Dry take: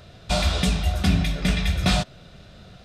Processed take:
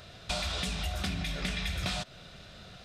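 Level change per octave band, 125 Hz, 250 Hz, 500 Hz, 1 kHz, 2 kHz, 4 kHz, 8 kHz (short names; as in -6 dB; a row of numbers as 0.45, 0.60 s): -13.5, -14.0, -11.0, -10.0, -7.0, -7.0, -7.5 dB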